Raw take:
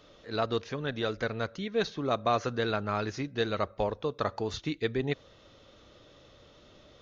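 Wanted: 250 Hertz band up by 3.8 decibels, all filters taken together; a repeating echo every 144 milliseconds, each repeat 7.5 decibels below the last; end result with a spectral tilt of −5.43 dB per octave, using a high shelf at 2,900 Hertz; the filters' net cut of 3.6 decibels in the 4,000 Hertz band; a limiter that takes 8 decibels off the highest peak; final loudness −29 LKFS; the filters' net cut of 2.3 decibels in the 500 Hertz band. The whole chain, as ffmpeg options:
ffmpeg -i in.wav -af "equalizer=frequency=250:width_type=o:gain=6,equalizer=frequency=500:width_type=o:gain=-4.5,highshelf=frequency=2900:gain=3,equalizer=frequency=4000:width_type=o:gain=-6,alimiter=limit=-23dB:level=0:latency=1,aecho=1:1:144|288|432|576|720:0.422|0.177|0.0744|0.0312|0.0131,volume=5dB" out.wav

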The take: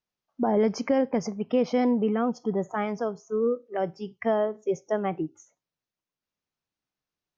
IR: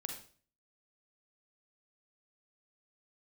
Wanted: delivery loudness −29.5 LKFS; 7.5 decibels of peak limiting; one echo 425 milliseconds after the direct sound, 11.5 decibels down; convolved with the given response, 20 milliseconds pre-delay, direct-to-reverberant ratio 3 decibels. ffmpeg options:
-filter_complex "[0:a]alimiter=limit=-20dB:level=0:latency=1,aecho=1:1:425:0.266,asplit=2[link_01][link_02];[1:a]atrim=start_sample=2205,adelay=20[link_03];[link_02][link_03]afir=irnorm=-1:irlink=0,volume=-1.5dB[link_04];[link_01][link_04]amix=inputs=2:normalize=0,volume=-1dB"

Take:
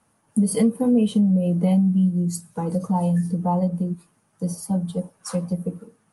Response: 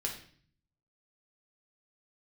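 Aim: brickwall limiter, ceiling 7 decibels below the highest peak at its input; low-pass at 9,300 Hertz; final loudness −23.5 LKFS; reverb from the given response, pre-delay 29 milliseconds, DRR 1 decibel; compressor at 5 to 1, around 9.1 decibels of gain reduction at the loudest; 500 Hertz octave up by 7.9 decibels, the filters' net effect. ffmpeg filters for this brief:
-filter_complex "[0:a]lowpass=9300,equalizer=frequency=500:width_type=o:gain=8.5,acompressor=threshold=-21dB:ratio=5,alimiter=limit=-19.5dB:level=0:latency=1,asplit=2[link_01][link_02];[1:a]atrim=start_sample=2205,adelay=29[link_03];[link_02][link_03]afir=irnorm=-1:irlink=0,volume=-3dB[link_04];[link_01][link_04]amix=inputs=2:normalize=0,volume=2dB"

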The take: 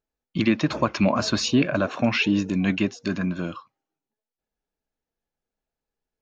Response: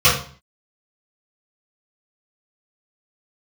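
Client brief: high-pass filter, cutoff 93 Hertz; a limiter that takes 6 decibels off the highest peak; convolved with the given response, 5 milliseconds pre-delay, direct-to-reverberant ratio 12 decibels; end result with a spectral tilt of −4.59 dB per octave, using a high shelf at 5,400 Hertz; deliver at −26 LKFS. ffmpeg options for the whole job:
-filter_complex "[0:a]highpass=93,highshelf=frequency=5400:gain=-4,alimiter=limit=-14.5dB:level=0:latency=1,asplit=2[link_01][link_02];[1:a]atrim=start_sample=2205,adelay=5[link_03];[link_02][link_03]afir=irnorm=-1:irlink=0,volume=-36dB[link_04];[link_01][link_04]amix=inputs=2:normalize=0"

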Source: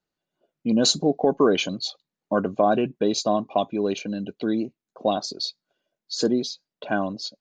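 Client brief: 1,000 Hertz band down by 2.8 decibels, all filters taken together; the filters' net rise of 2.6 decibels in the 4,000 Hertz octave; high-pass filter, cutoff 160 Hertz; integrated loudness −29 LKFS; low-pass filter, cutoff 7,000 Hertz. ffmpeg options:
ffmpeg -i in.wav -af "highpass=160,lowpass=7000,equalizer=frequency=1000:width_type=o:gain=-4.5,equalizer=frequency=4000:width_type=o:gain=3.5,volume=-4dB" out.wav

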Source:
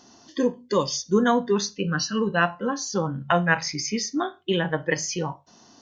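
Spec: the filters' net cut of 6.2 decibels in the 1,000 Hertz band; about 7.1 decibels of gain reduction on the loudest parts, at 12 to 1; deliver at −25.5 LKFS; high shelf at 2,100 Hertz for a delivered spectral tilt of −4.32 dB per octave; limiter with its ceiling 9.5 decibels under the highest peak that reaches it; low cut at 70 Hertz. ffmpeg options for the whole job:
ffmpeg -i in.wav -af "highpass=70,equalizer=frequency=1000:width_type=o:gain=-7.5,highshelf=frequency=2100:gain=-5,acompressor=threshold=-23dB:ratio=12,volume=7.5dB,alimiter=limit=-16dB:level=0:latency=1" out.wav

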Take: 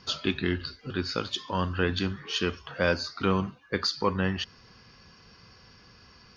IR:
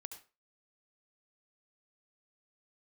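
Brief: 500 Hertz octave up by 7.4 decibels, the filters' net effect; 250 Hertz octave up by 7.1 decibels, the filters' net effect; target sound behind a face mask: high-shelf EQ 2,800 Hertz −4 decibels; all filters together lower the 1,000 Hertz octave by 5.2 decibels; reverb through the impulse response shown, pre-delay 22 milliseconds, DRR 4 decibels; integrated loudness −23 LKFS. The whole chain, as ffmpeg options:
-filter_complex "[0:a]equalizer=frequency=250:width_type=o:gain=8,equalizer=frequency=500:width_type=o:gain=8,equalizer=frequency=1000:width_type=o:gain=-8,asplit=2[link_01][link_02];[1:a]atrim=start_sample=2205,adelay=22[link_03];[link_02][link_03]afir=irnorm=-1:irlink=0,volume=1dB[link_04];[link_01][link_04]amix=inputs=2:normalize=0,highshelf=frequency=2800:gain=-4,volume=0.5dB"

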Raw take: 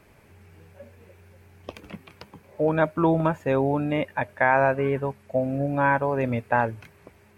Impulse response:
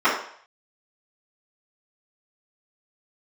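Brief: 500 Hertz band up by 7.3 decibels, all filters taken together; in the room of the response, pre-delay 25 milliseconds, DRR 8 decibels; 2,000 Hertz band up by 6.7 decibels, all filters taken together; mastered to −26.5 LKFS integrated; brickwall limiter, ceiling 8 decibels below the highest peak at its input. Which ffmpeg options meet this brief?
-filter_complex "[0:a]equalizer=frequency=500:width_type=o:gain=8.5,equalizer=frequency=2000:width_type=o:gain=8.5,alimiter=limit=-9dB:level=0:latency=1,asplit=2[link_01][link_02];[1:a]atrim=start_sample=2205,adelay=25[link_03];[link_02][link_03]afir=irnorm=-1:irlink=0,volume=-29dB[link_04];[link_01][link_04]amix=inputs=2:normalize=0,volume=-6dB"

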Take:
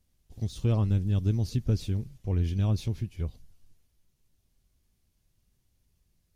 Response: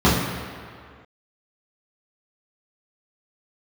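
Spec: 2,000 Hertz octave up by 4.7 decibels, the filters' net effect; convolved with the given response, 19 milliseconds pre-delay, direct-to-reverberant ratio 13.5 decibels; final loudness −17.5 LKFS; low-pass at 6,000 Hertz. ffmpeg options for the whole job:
-filter_complex "[0:a]lowpass=6000,equalizer=frequency=2000:width_type=o:gain=6.5,asplit=2[link_01][link_02];[1:a]atrim=start_sample=2205,adelay=19[link_03];[link_02][link_03]afir=irnorm=-1:irlink=0,volume=-36.5dB[link_04];[link_01][link_04]amix=inputs=2:normalize=0,volume=10.5dB"

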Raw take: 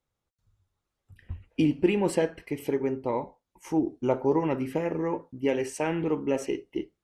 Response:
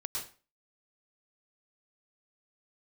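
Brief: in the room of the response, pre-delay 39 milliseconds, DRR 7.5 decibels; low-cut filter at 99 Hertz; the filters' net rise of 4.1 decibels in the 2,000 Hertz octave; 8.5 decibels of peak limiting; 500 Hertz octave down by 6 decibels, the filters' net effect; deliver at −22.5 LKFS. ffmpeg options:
-filter_complex "[0:a]highpass=99,equalizer=frequency=500:width_type=o:gain=-8,equalizer=frequency=2000:width_type=o:gain=5.5,alimiter=limit=-22.5dB:level=0:latency=1,asplit=2[link_01][link_02];[1:a]atrim=start_sample=2205,adelay=39[link_03];[link_02][link_03]afir=irnorm=-1:irlink=0,volume=-9dB[link_04];[link_01][link_04]amix=inputs=2:normalize=0,volume=11dB"

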